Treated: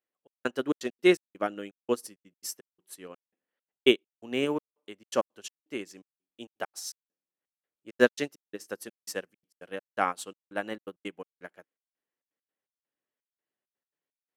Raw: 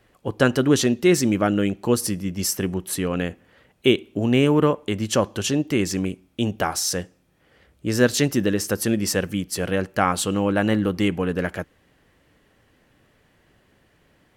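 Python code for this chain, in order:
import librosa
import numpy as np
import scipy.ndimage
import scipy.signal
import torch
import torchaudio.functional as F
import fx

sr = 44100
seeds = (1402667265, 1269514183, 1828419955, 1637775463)

y = scipy.signal.sosfilt(scipy.signal.butter(2, 310.0, 'highpass', fs=sr, output='sos'), x)
y = fx.step_gate(y, sr, bpm=167, pattern='xxx..xxx.x.xx..x', floor_db=-60.0, edge_ms=4.5)
y = fx.upward_expand(y, sr, threshold_db=-36.0, expansion=2.5)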